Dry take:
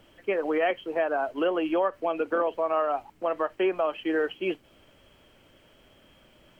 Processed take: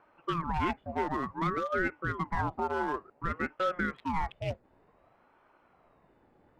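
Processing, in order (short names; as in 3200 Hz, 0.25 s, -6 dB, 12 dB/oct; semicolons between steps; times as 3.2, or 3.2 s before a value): Wiener smoothing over 15 samples; vibrato 2.8 Hz 9 cents; ring modulator with a swept carrier 580 Hz, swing 60%, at 0.55 Hz; gain -2 dB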